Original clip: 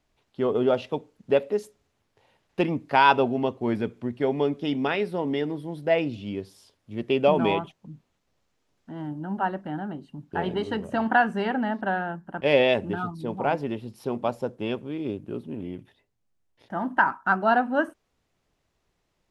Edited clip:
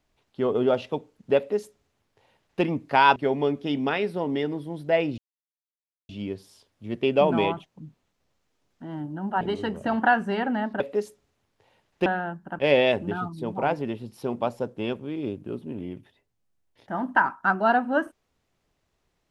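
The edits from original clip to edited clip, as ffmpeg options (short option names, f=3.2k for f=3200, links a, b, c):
-filter_complex "[0:a]asplit=6[a][b][c][d][e][f];[a]atrim=end=3.162[g];[b]atrim=start=4.138:end=6.16,asetpts=PTS-STARTPTS,afade=t=out:st=2.018:d=0.004:c=hsin,apad=pad_dur=0.91[h];[c]atrim=start=6.16:end=9.482,asetpts=PTS-STARTPTS,afade=t=in:d=0.004:c=hsin[i];[d]atrim=start=10.488:end=11.882[j];[e]atrim=start=1.368:end=2.632[k];[f]atrim=start=11.878[l];[h][i]concat=n=2:v=0:a=1[m];[g][m]acrossfade=d=0.004:c1=hsin:c2=hsin[n];[n][j]acrossfade=d=0.004:c1=hsin:c2=hsin[o];[o][k]acrossfade=d=0.004:c1=hsin:c2=hsin[p];[p][l]acrossfade=d=0.004:c1=hsin:c2=hsin"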